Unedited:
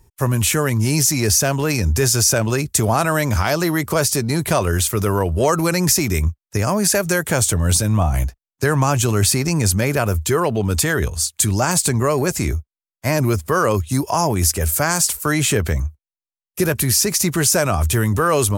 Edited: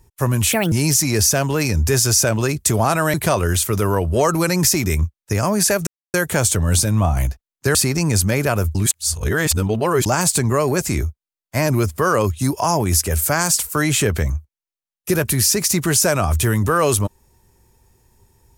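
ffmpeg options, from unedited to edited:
-filter_complex "[0:a]asplit=8[a][b][c][d][e][f][g][h];[a]atrim=end=0.524[i];[b]atrim=start=0.52:end=0.81,asetpts=PTS-STARTPTS,asetrate=64386,aresample=44100[j];[c]atrim=start=0.806:end=3.232[k];[d]atrim=start=4.378:end=7.11,asetpts=PTS-STARTPTS,afade=t=out:st=2.728:d=0.004:c=hsin,apad=pad_dur=0.27[l];[e]atrim=start=7.11:end=8.722,asetpts=PTS-STARTPTS,afade=t=in:d=0.004:c=hsin[m];[f]atrim=start=9.248:end=10.252[n];[g]atrim=start=10.248:end=11.562,asetpts=PTS-STARTPTS,areverse[o];[h]atrim=start=11.558[p];[i][j]acrossfade=d=0.004:c1=hsin:c2=hsin[q];[q][k]acrossfade=d=0.004:c1=hsin:c2=hsin[r];[l][m]concat=n=2:v=0:a=1[s];[r][s]acrossfade=d=0.004:c1=hsin:c2=hsin[t];[t][n]acrossfade=d=0.004:c1=hsin:c2=hsin[u];[u][o]acrossfade=d=0.004:c1=hsin:c2=hsin[v];[v][p]acrossfade=d=0.004:c1=hsin:c2=hsin"

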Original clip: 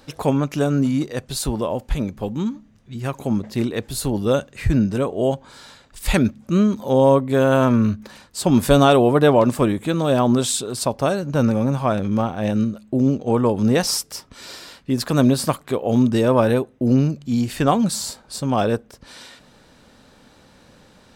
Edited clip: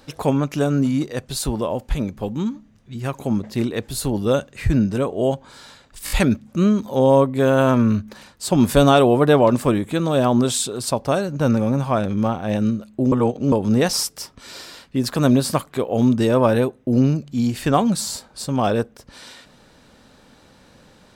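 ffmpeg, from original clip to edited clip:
-filter_complex "[0:a]asplit=6[a][b][c][d][e][f];[a]atrim=end=6.072[g];[b]atrim=start=6.048:end=6.072[h];[c]atrim=start=6.048:end=6.072[i];[d]atrim=start=6.048:end=13.062[j];[e]atrim=start=13.058:end=13.462,asetpts=PTS-STARTPTS,areverse[k];[f]atrim=start=13.458[l];[g][h]acrossfade=d=0.004:c1=hsin:c2=hsin[m];[m][i]acrossfade=d=0.004:c1=hsin:c2=hsin[n];[n][j]acrossfade=d=0.004:c1=hsin:c2=hsin[o];[o][k]acrossfade=d=0.004:c1=hsin:c2=hsin[p];[p][l]acrossfade=d=0.004:c1=hsin:c2=hsin"

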